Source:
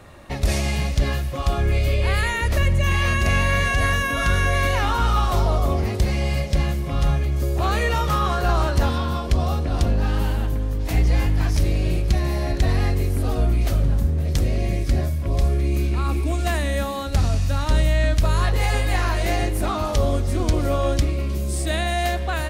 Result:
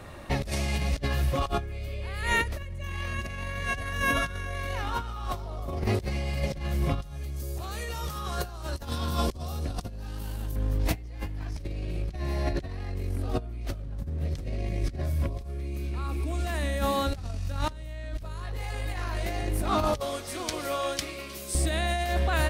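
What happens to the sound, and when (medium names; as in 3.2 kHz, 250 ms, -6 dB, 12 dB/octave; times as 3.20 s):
7.02–10.56 s: tone controls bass +2 dB, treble +12 dB
11.38–15.10 s: treble shelf 11 kHz -9.5 dB
20.00–21.55 s: high-pass 1.4 kHz 6 dB/octave
whole clip: peaking EQ 6.9 kHz -2.5 dB 0.21 oct; compressor with a negative ratio -24 dBFS, ratio -0.5; trim -4.5 dB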